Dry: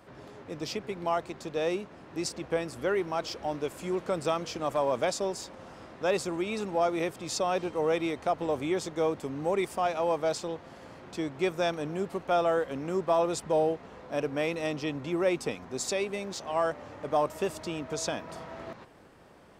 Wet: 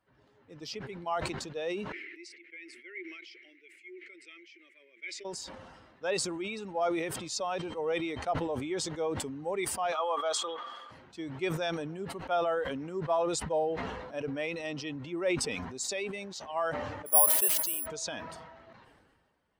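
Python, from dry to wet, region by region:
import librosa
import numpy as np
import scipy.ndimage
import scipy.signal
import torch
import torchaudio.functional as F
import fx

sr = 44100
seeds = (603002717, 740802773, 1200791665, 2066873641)

y = fx.chain(x, sr, fx.double_bandpass(hz=870.0, octaves=2.6),
    fx.tilt_eq(slope=4.0), at=(1.92, 5.25))
y = fx.chain(y, sr, fx.highpass(hz=370.0, slope=12),
    fx.dynamic_eq(hz=4900.0, q=2.9, threshold_db=-55.0, ratio=4.0, max_db=-6),
    fx.small_body(hz=(1200.0, 3300.0), ring_ms=25, db=14), at=(9.92, 10.91))
y = fx.chain(y, sr, fx.highpass(hz=350.0, slope=6),
    fx.resample_bad(factor=4, down='none', up='zero_stuff'), at=(17.06, 17.86))
y = fx.bin_expand(y, sr, power=1.5)
y = fx.low_shelf(y, sr, hz=310.0, db=-10.5)
y = fx.sustainer(y, sr, db_per_s=35.0)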